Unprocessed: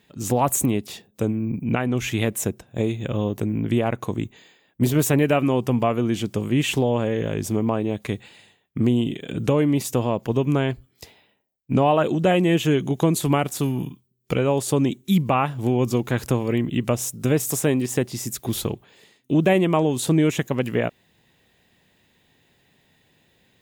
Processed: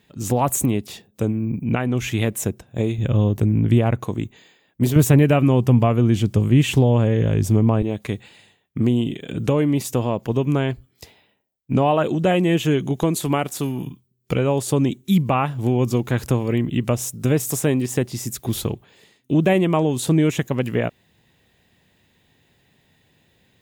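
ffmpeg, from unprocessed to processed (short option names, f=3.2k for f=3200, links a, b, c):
-af "asetnsamples=n=441:p=0,asendcmd='2.98 equalizer g 12;4.03 equalizer g 2.5;4.96 equalizer g 14;7.82 equalizer g 2.5;13.03 equalizer g -3.5;13.87 equalizer g 4.5',equalizer=f=77:t=o:w=2.2:g=4"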